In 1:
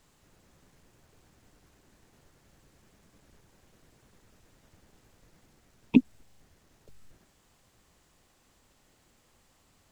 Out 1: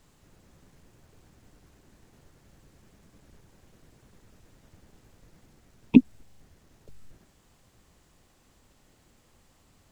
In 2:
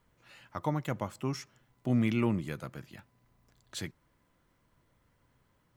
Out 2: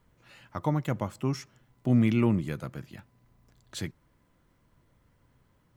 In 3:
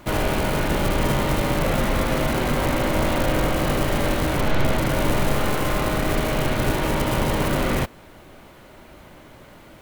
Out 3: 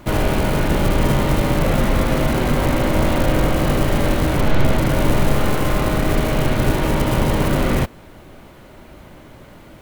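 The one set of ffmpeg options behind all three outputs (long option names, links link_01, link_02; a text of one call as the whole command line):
ffmpeg -i in.wav -af "lowshelf=frequency=400:gain=5,volume=1dB" out.wav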